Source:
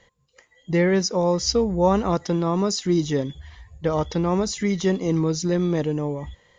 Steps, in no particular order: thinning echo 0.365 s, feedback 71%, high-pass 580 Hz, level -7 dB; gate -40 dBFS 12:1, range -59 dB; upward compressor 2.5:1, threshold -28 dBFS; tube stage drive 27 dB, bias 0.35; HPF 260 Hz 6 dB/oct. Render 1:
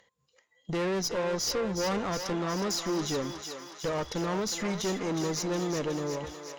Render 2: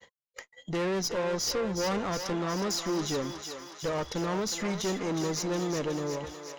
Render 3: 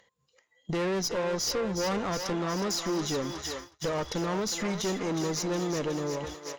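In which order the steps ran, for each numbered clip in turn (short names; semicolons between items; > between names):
HPF > gate > upward compressor > tube stage > thinning echo; upward compressor > HPF > gate > tube stage > thinning echo; HPF > tube stage > thinning echo > gate > upward compressor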